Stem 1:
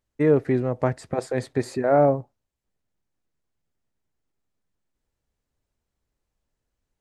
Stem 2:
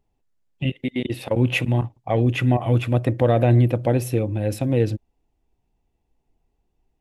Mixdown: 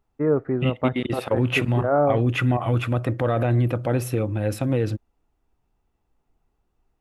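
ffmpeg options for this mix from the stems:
ffmpeg -i stem1.wav -i stem2.wav -filter_complex "[0:a]lowpass=1100,volume=-2.5dB[link_01];[1:a]alimiter=limit=-11.5dB:level=0:latency=1:release=30,volume=-1dB[link_02];[link_01][link_02]amix=inputs=2:normalize=0,equalizer=frequency=1300:width_type=o:width=0.63:gain=11" out.wav

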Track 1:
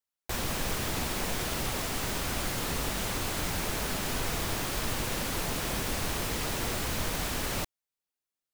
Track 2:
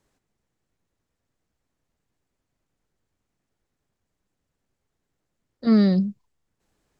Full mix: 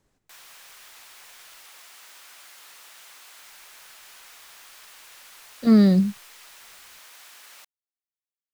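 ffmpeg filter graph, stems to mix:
ffmpeg -i stem1.wav -i stem2.wav -filter_complex "[0:a]highpass=1200,volume=-12.5dB[link_01];[1:a]volume=0.5dB,asplit=3[link_02][link_03][link_04];[link_02]atrim=end=1.66,asetpts=PTS-STARTPTS,afade=type=out:start_time=1.656:duration=0.004:curve=hsin[link_05];[link_03]atrim=start=1.66:end=3.42,asetpts=PTS-STARTPTS,volume=0[link_06];[link_04]atrim=start=3.42,asetpts=PTS-STARTPTS,afade=type=in:duration=0.004:curve=hsin[link_07];[link_05][link_06][link_07]concat=n=3:v=0:a=1[link_08];[link_01][link_08]amix=inputs=2:normalize=0,lowshelf=frequency=200:gain=3.5" out.wav

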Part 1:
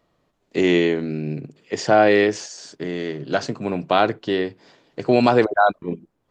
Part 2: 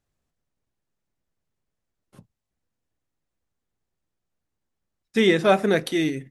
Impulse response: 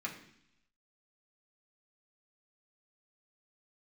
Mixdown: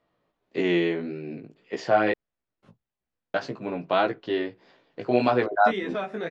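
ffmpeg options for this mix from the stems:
-filter_complex "[0:a]volume=-1.5dB,asplit=3[link_01][link_02][link_03];[link_01]atrim=end=2.12,asetpts=PTS-STARTPTS,afade=type=out:start_time=2.116:duration=0.004:curve=hsin[link_04];[link_02]atrim=start=2.12:end=3.34,asetpts=PTS-STARTPTS,volume=0[link_05];[link_03]atrim=start=3.34,asetpts=PTS-STARTPTS,afade=type=in:duration=0.004:curve=hsin[link_06];[link_04][link_05][link_06]concat=n=3:v=0:a=1[link_07];[1:a]acompressor=threshold=-23dB:ratio=6,adelay=500,volume=0.5dB[link_08];[link_07][link_08]amix=inputs=2:normalize=0,lowpass=3700,lowshelf=frequency=200:gain=-7,flanger=delay=15:depth=3.3:speed=1.7"

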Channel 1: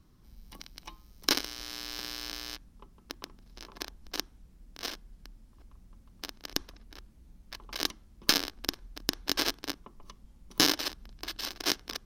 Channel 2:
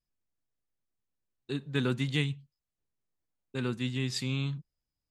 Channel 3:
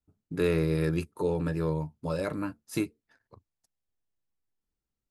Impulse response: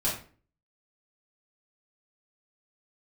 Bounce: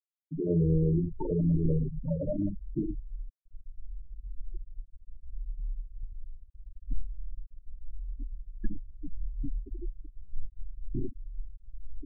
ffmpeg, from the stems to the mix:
-filter_complex "[0:a]aemphasis=mode=reproduction:type=riaa,acrusher=bits=5:mix=0:aa=0.000001,asplit=2[link_01][link_02];[link_02]adelay=5.2,afreqshift=-0.76[link_03];[link_01][link_03]amix=inputs=2:normalize=1,adelay=350,volume=-10dB,asplit=2[link_04][link_05];[link_05]volume=-5dB[link_06];[1:a]aexciter=amount=13:drive=7.5:freq=4000,volume=-1.5dB[link_07];[2:a]acrusher=bits=5:mix=0:aa=0.000001,volume=-2.5dB,asplit=3[link_08][link_09][link_10];[link_09]volume=-8.5dB[link_11];[link_10]apad=whole_len=225291[link_12];[link_07][link_12]sidechaingate=range=-33dB:threshold=-37dB:ratio=16:detection=peak[link_13];[link_13][link_08]amix=inputs=2:normalize=0,adynamicsmooth=sensitivity=3:basefreq=820,alimiter=level_in=2.5dB:limit=-24dB:level=0:latency=1:release=142,volume=-2.5dB,volume=0dB[link_14];[3:a]atrim=start_sample=2205[link_15];[link_06][link_11]amix=inputs=2:normalize=0[link_16];[link_16][link_15]afir=irnorm=-1:irlink=0[link_17];[link_04][link_14][link_17]amix=inputs=3:normalize=0,afftfilt=real='re*gte(hypot(re,im),0.112)':imag='im*gte(hypot(re,im),0.112)':win_size=1024:overlap=0.75"

